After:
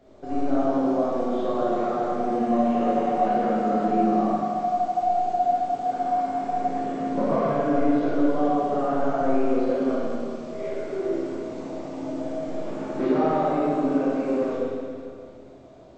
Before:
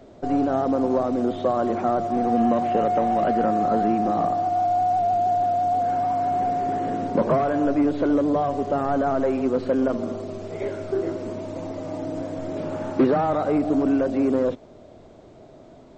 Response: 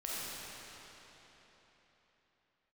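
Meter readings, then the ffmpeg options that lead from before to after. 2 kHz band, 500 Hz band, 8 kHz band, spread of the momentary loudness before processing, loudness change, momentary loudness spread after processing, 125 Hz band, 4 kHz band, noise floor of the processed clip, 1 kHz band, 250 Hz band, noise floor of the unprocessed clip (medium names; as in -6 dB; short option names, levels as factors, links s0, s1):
-1.5 dB, -1.5 dB, no reading, 10 LU, -1.5 dB, 10 LU, -4.0 dB, -1.5 dB, -44 dBFS, -2.0 dB, -1.0 dB, -47 dBFS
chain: -filter_complex "[1:a]atrim=start_sample=2205,asetrate=79380,aresample=44100[s0];[0:a][s0]afir=irnorm=-1:irlink=0"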